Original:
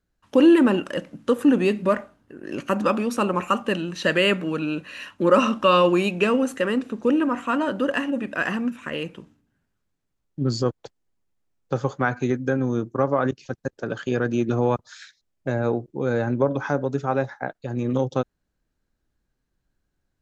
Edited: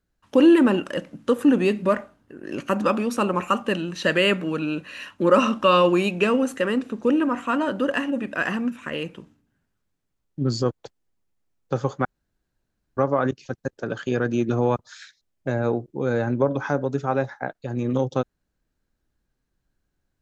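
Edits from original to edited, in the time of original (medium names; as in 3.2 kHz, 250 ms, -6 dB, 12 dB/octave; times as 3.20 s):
12.05–12.97 s: room tone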